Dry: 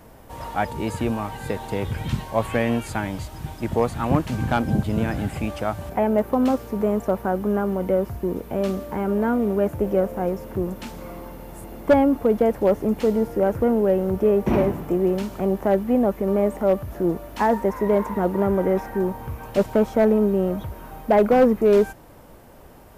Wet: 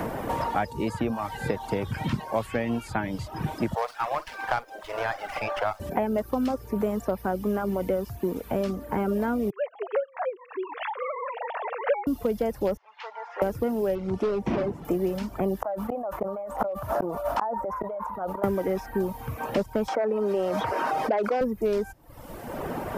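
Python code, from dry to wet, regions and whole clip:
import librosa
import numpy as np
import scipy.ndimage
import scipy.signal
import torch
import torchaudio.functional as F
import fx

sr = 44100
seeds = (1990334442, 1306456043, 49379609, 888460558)

y = fx.chain(x, sr, fx.highpass(hz=630.0, slope=24),
    fx.doubler(ms=49.0, db=-10),
    fx.running_max(window=5), at=(3.75, 5.8))
y = fx.chain(y, sr, fx.sine_speech(),
    fx.highpass(hz=640.0, slope=24), at=(9.5, 12.07))
y = fx.chain(y, sr, fx.ellip_bandpass(low_hz=890.0, high_hz=7200.0, order=3, stop_db=50),
    fx.air_absorb(metres=250.0), at=(12.77, 13.42))
y = fx.chain(y, sr, fx.overload_stage(gain_db=16.0),
    fx.air_absorb(metres=87.0), at=(13.95, 14.85))
y = fx.chain(y, sr, fx.band_shelf(hz=880.0, db=14.5, octaves=1.7),
    fx.gate_flip(shuts_db=-10.0, range_db=-35),
    fx.sustainer(db_per_s=36.0), at=(15.62, 18.44))
y = fx.chain(y, sr, fx.bandpass_edges(low_hz=450.0, high_hz=7500.0),
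    fx.env_flatten(amount_pct=70), at=(19.88, 21.41))
y = fx.dereverb_blind(y, sr, rt60_s=0.69)
y = fx.dynamic_eq(y, sr, hz=5100.0, q=3.8, threshold_db=-59.0, ratio=4.0, max_db=6)
y = fx.band_squash(y, sr, depth_pct=100)
y = F.gain(torch.from_numpy(y), -4.5).numpy()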